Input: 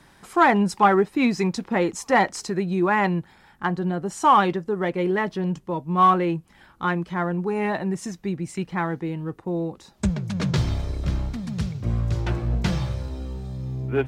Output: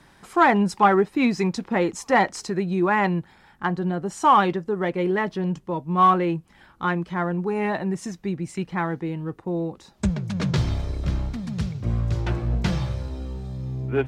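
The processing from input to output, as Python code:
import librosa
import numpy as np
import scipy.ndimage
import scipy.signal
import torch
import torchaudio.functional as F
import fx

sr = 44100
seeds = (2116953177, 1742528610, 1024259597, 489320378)

y = fx.high_shelf(x, sr, hz=8500.0, db=-4.5)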